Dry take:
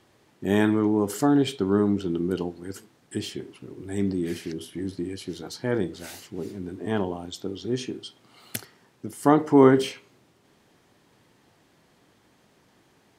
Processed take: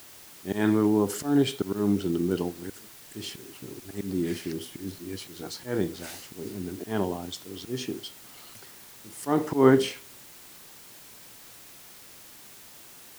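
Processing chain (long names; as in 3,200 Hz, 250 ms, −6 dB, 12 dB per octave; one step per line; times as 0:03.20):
volume swells 158 ms
background noise white −49 dBFS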